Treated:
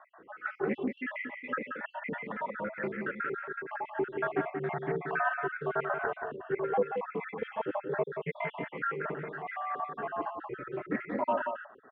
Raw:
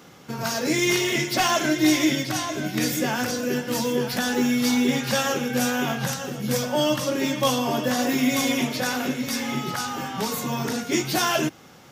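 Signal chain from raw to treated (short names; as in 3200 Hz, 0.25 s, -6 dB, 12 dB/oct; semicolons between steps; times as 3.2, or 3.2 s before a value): random spectral dropouts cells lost 68%; mistuned SSB -100 Hz 410–2000 Hz; on a send: echo 0.18 s -6.5 dB; on the sum: Doppler distortion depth 0.14 ms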